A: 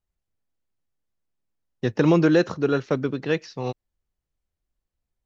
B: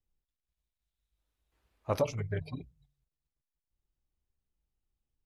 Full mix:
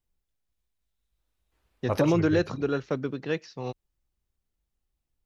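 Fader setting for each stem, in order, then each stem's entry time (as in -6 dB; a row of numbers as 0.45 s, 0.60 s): -5.5 dB, +2.5 dB; 0.00 s, 0.00 s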